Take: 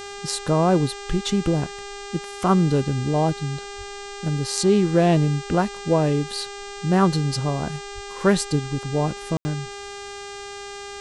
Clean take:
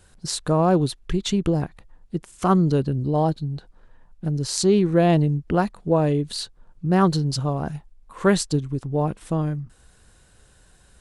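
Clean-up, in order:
hum removal 402.4 Hz, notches 21
high-pass at the plosives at 0:03.77/0:07.94
ambience match 0:09.37–0:09.45

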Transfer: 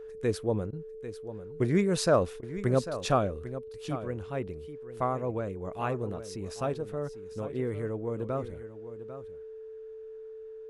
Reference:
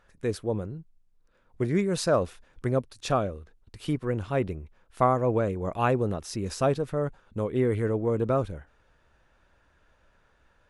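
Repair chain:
notch filter 440 Hz, Q 30
repair the gap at 0:00.71/0:02.41, 17 ms
echo removal 796 ms −12.5 dB
level correction +7.5 dB, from 0:03.58

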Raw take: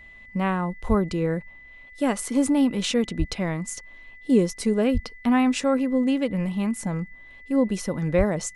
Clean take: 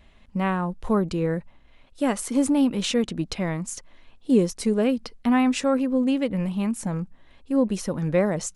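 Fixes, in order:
notch filter 2,000 Hz, Q 30
high-pass at the plosives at 0:00.88/0:03.18/0:04.93/0:08.17

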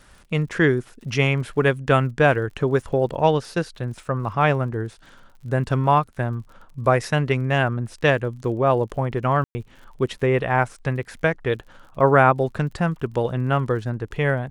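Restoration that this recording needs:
click removal
ambience match 0:09.44–0:09.55

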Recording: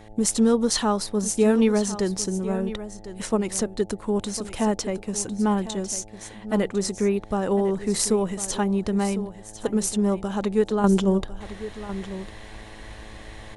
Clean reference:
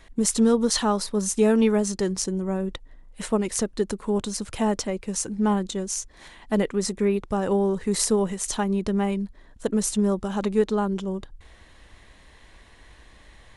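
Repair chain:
hum removal 107.6 Hz, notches 8
echo removal 1,052 ms −13.5 dB
level 0 dB, from 0:10.84 −8.5 dB

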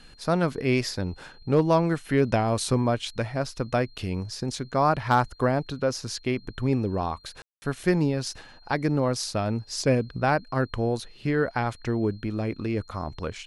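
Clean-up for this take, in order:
clipped peaks rebuilt −11 dBFS
notch filter 4,200 Hz, Q 30
ambience match 0:07.42–0:07.62

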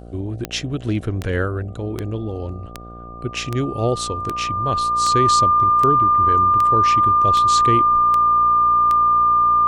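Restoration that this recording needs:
click removal
hum removal 58.6 Hz, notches 13
notch filter 1,200 Hz, Q 30

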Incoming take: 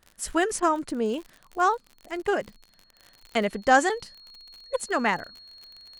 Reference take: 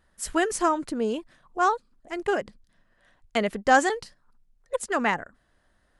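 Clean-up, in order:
click removal
notch filter 4,300 Hz, Q 30
repair the gap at 0:01.29/0:01.89/0:03.33/0:03.65/0:04.00/0:04.60, 1.9 ms
repair the gap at 0:00.60/0:02.22/0:02.91, 23 ms

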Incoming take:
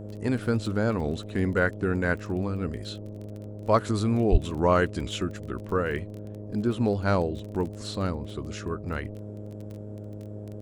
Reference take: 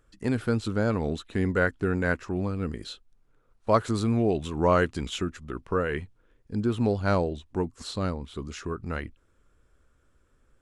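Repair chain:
click removal
hum removal 104.4 Hz, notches 6
high-pass at the plosives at 0:04.31
noise reduction from a noise print 25 dB

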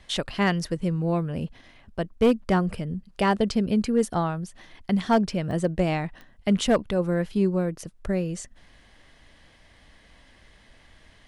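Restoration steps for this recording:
clipped peaks rebuilt −13 dBFS
click removal

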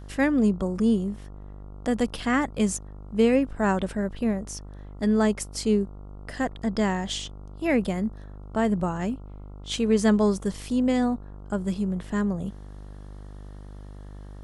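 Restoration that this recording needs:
hum removal 49.9 Hz, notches 28

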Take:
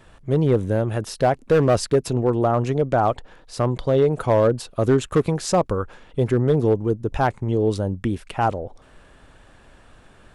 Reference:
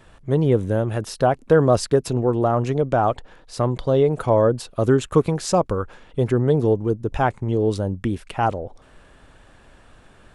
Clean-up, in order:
clipped peaks rebuilt −10.5 dBFS

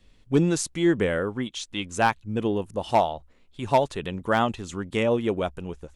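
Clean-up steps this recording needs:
clipped peaks rebuilt −11 dBFS

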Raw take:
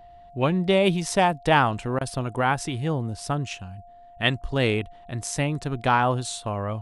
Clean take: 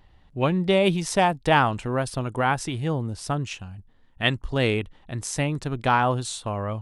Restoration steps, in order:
notch filter 700 Hz, Q 30
repair the gap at 0:01.99, 19 ms

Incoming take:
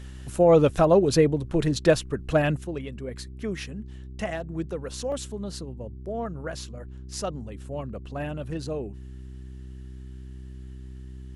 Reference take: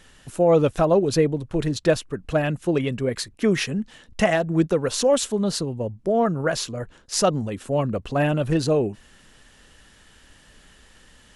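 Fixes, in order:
hum removal 64.2 Hz, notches 6
repair the gap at 0:05.12, 2.5 ms
level 0 dB, from 0:02.64 +11.5 dB

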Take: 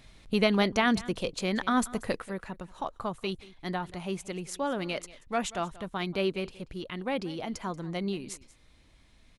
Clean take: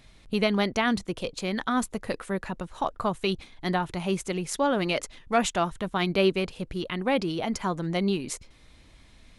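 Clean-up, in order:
echo removal 184 ms −19.5 dB
level 0 dB, from 0:02.22 +6.5 dB

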